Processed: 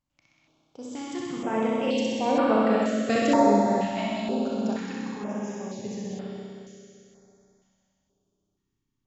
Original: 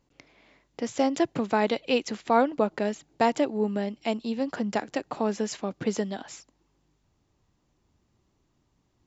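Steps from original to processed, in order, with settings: Doppler pass-by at 3.09, 15 m/s, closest 10 m; flutter echo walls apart 10.9 m, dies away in 1.2 s; Schroeder reverb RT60 3 s, combs from 28 ms, DRR -2.5 dB; stepped notch 2.1 Hz 420–6300 Hz

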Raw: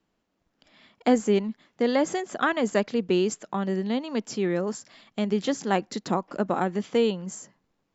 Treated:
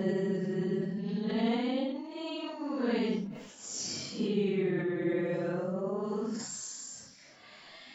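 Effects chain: compressor, threshold -29 dBFS, peak gain reduction 13.5 dB; Paulstretch 6.1×, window 0.05 s, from 3.68; sustainer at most 56 dB/s

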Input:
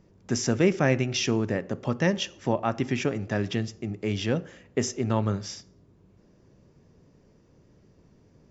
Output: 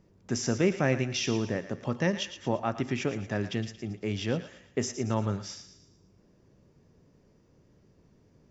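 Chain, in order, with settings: thinning echo 0.114 s, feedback 46%, high-pass 1100 Hz, level -10 dB; gain -3.5 dB

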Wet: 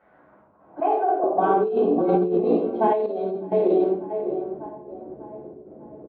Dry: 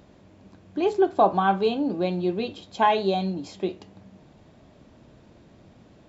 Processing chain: doubler 14 ms -9 dB; thinning echo 0.597 s, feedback 49%, high-pass 250 Hz, level -10 dB; limiter -16.5 dBFS, peak gain reduction 10 dB; step gate "xx.xxx.xx.x" 77 bpm -12 dB; shoebox room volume 190 m³, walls mixed, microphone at 4.9 m; band-pass sweep 1800 Hz -> 420 Hz, 0.05–1.58; 1.89–2.45 low shelf 180 Hz +8.5 dB; low-pass opened by the level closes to 980 Hz, open at -11 dBFS; negative-ratio compressor -19 dBFS, ratio -1; 0.8–1.24 three-band isolator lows -16 dB, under 410 Hz, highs -18 dB, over 2600 Hz; 3.06–3.52 resonator 130 Hz, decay 0.75 s, harmonics odd, mix 70%

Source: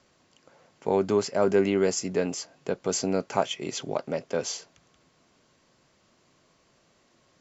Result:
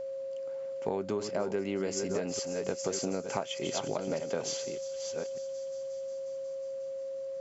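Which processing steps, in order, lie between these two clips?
reverse delay 0.598 s, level -9 dB; whine 540 Hz -34 dBFS; on a send: thin delay 0.18 s, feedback 82%, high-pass 4400 Hz, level -13.5 dB; on the sum: compressor 12:1, threshold -27 dBFS, peak gain reduction 11.5 dB; gain -1 dB

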